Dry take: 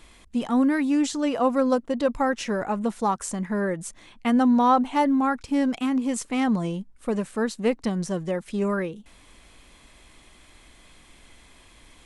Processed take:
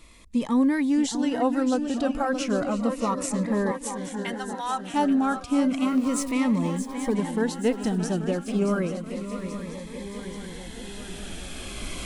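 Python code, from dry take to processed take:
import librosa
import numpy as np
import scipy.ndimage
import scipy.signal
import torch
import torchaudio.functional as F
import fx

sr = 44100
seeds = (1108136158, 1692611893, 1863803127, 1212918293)

y = fx.zero_step(x, sr, step_db=-37.5, at=(5.88, 6.32))
y = fx.recorder_agc(y, sr, target_db=-15.5, rise_db_per_s=5.6, max_gain_db=30)
y = fx.highpass(y, sr, hz=1300.0, slope=12, at=(3.71, 4.94))
y = fx.echo_swing(y, sr, ms=831, ratio=3, feedback_pct=60, wet_db=-10.0)
y = fx.notch_cascade(y, sr, direction='falling', hz=0.32)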